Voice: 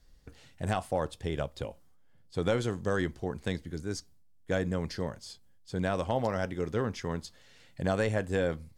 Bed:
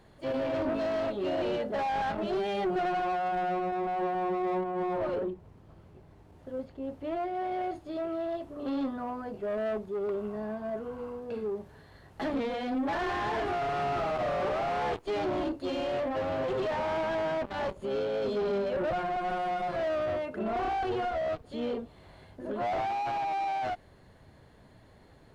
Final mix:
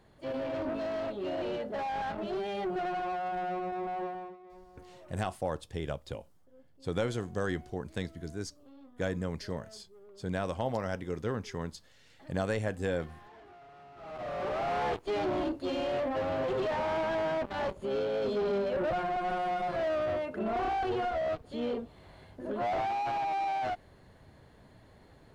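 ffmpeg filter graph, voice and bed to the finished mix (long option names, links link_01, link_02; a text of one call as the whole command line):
ffmpeg -i stem1.wav -i stem2.wav -filter_complex "[0:a]adelay=4500,volume=-3dB[link_01];[1:a]volume=18.5dB,afade=type=out:start_time=3.96:duration=0.41:silence=0.112202,afade=type=in:start_time=13.96:duration=0.77:silence=0.0749894[link_02];[link_01][link_02]amix=inputs=2:normalize=0" out.wav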